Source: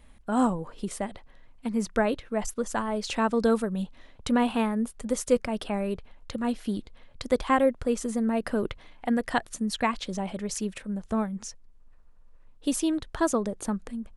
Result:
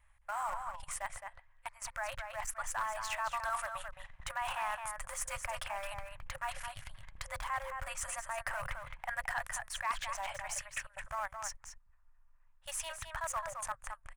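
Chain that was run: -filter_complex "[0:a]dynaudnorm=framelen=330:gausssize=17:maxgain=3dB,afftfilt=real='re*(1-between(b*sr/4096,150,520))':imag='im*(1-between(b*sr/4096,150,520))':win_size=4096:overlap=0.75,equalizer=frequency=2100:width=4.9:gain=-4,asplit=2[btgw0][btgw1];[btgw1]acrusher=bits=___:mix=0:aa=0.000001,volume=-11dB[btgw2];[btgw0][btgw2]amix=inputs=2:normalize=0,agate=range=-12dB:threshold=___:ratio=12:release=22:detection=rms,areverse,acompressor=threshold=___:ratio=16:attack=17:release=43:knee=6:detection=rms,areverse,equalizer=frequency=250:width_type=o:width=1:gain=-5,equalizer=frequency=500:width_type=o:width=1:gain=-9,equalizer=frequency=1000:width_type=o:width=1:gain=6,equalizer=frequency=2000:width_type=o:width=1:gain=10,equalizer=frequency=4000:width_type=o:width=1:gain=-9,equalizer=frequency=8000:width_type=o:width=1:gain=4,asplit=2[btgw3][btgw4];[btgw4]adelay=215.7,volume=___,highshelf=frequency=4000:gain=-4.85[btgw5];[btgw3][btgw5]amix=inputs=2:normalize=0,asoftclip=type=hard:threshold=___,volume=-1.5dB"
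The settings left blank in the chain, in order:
4, -45dB, -37dB, -6dB, -25dB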